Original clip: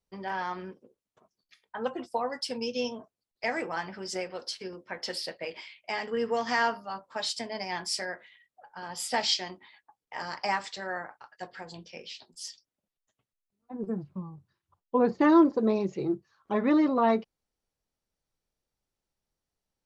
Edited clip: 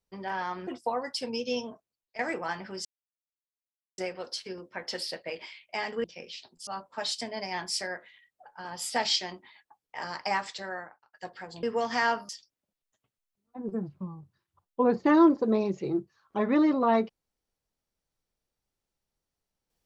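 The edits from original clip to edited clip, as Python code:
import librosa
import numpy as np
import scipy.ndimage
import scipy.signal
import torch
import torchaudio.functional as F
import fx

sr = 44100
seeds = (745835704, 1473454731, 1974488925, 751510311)

y = fx.edit(x, sr, fx.cut(start_s=0.67, length_s=1.28),
    fx.fade_out_to(start_s=2.97, length_s=0.5, floor_db=-15.0),
    fx.insert_silence(at_s=4.13, length_s=1.13),
    fx.swap(start_s=6.19, length_s=0.66, other_s=11.81, other_length_s=0.63),
    fx.fade_out_span(start_s=10.79, length_s=0.52), tone=tone)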